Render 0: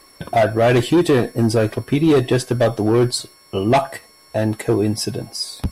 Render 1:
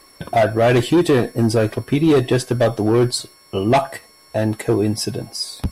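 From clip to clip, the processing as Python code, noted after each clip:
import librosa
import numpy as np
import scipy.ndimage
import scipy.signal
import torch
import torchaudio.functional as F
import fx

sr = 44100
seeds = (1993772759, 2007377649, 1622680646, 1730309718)

y = x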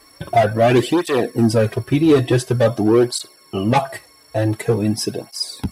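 y = fx.flanger_cancel(x, sr, hz=0.47, depth_ms=5.6)
y = F.gain(torch.from_numpy(y), 3.0).numpy()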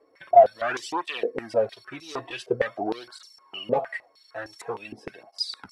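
y = fx.filter_held_bandpass(x, sr, hz=6.5, low_hz=480.0, high_hz=5700.0)
y = F.gain(torch.from_numpy(y), 2.0).numpy()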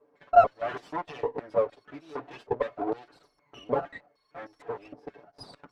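y = fx.lower_of_two(x, sr, delay_ms=6.9)
y = fx.bandpass_q(y, sr, hz=460.0, q=0.66)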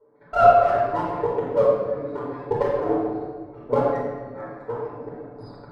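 y = fx.wiener(x, sr, points=15)
y = fx.room_shoebox(y, sr, seeds[0], volume_m3=1700.0, walls='mixed', distance_m=4.6)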